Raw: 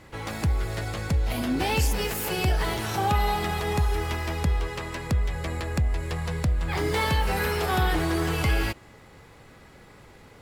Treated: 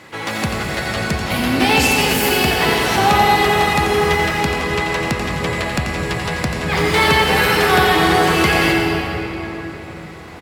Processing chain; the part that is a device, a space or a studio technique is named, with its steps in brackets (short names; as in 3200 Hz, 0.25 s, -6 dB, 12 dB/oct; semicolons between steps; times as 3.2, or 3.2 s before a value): PA in a hall (HPF 150 Hz 12 dB/oct; bell 2600 Hz +5 dB 2.9 oct; echo 87 ms -8 dB; reverb RT60 4.2 s, pre-delay 85 ms, DRR 0.5 dB); gain +7 dB